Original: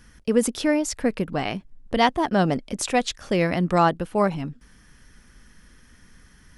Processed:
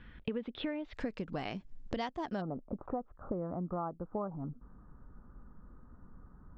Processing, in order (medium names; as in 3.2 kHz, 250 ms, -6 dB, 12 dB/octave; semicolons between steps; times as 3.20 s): Chebyshev low-pass 3.7 kHz, order 5, from 0.93 s 7.4 kHz, from 2.40 s 1.3 kHz; compression 10:1, threshold -33 dBFS, peak gain reduction 19 dB; trim -1 dB